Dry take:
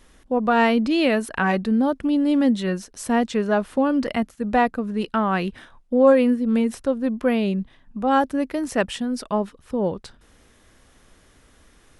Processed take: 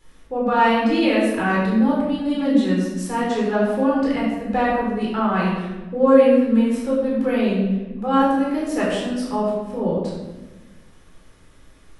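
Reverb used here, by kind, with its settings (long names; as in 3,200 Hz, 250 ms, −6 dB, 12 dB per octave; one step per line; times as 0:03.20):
rectangular room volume 680 cubic metres, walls mixed, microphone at 4.1 metres
level −8 dB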